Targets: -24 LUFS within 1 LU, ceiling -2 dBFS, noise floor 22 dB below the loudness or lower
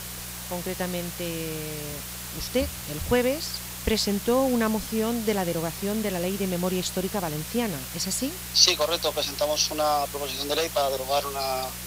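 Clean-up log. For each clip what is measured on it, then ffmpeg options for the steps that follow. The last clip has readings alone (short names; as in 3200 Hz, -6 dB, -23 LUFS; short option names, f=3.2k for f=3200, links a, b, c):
hum 60 Hz; harmonics up to 180 Hz; hum level -40 dBFS; noise floor -37 dBFS; noise floor target -48 dBFS; loudness -26.0 LUFS; peak -2.5 dBFS; loudness target -24.0 LUFS
-> -af "bandreject=f=60:t=h:w=4,bandreject=f=120:t=h:w=4,bandreject=f=180:t=h:w=4"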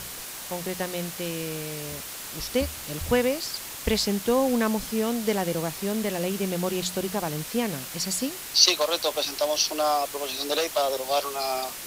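hum none; noise floor -38 dBFS; noise floor target -48 dBFS
-> -af "afftdn=nr=10:nf=-38"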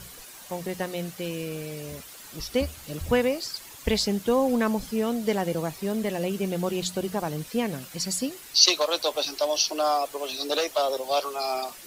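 noise floor -45 dBFS; noise floor target -49 dBFS
-> -af "afftdn=nr=6:nf=-45"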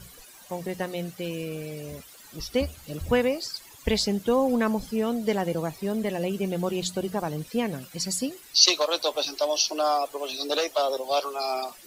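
noise floor -49 dBFS; loudness -26.5 LUFS; peak -2.5 dBFS; loudness target -24.0 LUFS
-> -af "volume=2.5dB,alimiter=limit=-2dB:level=0:latency=1"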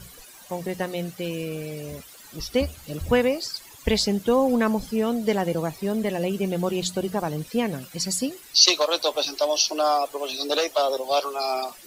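loudness -24.0 LUFS; peak -2.0 dBFS; noise floor -47 dBFS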